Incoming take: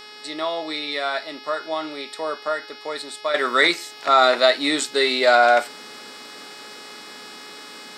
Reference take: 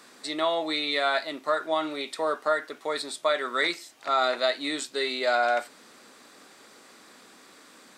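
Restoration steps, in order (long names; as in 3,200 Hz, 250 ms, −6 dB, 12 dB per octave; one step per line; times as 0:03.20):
hum removal 421.9 Hz, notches 13
level 0 dB, from 0:03.34 −9 dB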